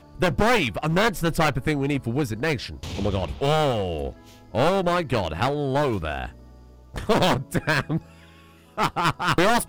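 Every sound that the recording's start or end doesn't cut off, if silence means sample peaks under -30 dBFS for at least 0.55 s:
6.95–7.98

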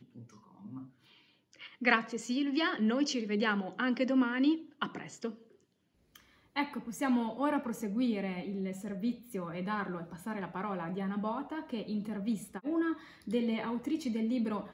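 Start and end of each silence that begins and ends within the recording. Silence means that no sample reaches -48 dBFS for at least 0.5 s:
0.87–1.53
5.42–6.16

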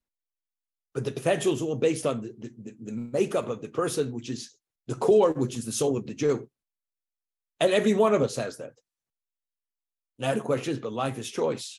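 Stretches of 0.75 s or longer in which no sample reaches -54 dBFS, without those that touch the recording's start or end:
6.47–7.6
8.79–10.19

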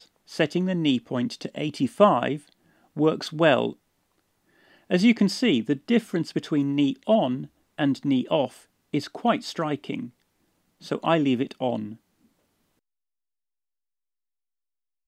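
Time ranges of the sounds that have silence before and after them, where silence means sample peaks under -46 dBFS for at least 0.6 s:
4.71–10.1
10.81–11.96

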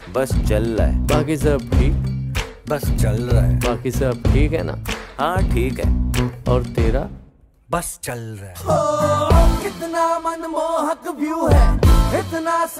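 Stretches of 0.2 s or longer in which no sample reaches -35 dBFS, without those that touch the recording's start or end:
7.23–7.71

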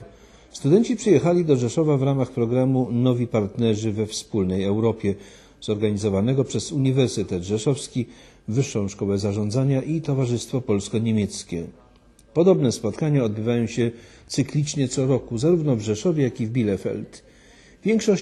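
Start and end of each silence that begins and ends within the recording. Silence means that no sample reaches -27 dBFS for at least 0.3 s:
5.13–5.64
8.03–8.49
11.66–12.37
13.9–14.31
17.04–17.86

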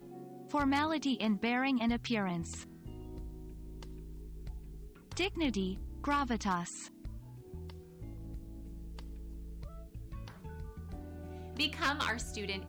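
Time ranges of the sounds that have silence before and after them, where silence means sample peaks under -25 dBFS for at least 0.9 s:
5.2–6.55

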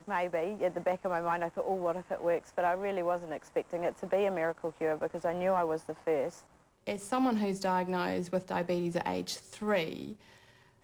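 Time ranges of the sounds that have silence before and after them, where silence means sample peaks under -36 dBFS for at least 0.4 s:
6.87–10.13

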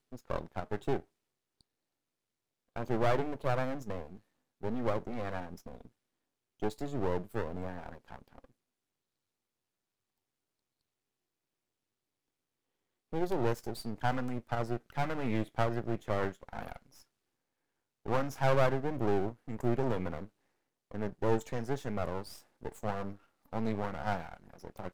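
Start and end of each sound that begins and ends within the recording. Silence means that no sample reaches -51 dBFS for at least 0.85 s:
2.76–8.45
13.13–17.02

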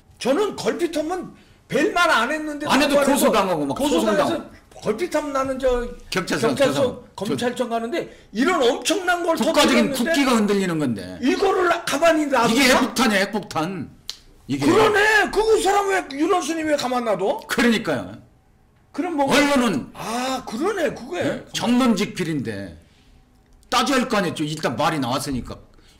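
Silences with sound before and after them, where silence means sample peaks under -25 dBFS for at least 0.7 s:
18.05–18.99
22.67–23.72

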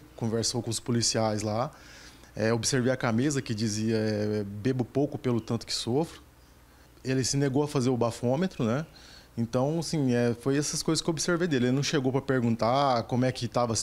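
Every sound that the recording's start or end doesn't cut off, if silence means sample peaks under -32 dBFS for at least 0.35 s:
2.37–6.05
7.05–8.82

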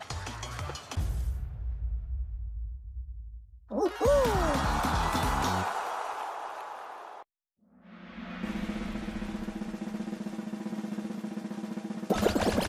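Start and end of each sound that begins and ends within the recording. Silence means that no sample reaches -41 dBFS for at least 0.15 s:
3.71–7.23

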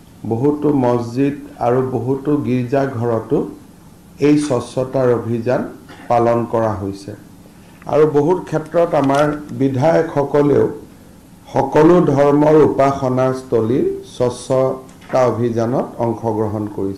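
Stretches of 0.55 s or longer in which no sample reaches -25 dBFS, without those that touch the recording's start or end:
3.53–4.21
7.14–7.82
10.77–11.49

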